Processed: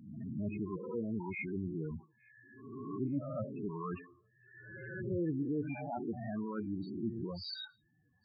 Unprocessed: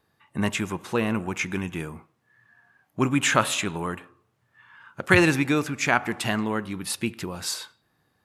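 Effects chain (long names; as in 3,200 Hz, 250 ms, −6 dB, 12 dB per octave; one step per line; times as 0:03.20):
peak hold with a rise ahead of every peak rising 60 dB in 0.81 s
treble cut that deepens with the level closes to 930 Hz, closed at −17 dBFS
reversed playback
downward compressor 5 to 1, threshold −31 dBFS, peak gain reduction 15 dB
reversed playback
spectral peaks only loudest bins 8
delay with a high-pass on its return 865 ms, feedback 36%, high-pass 3,300 Hz, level −22 dB
level −2 dB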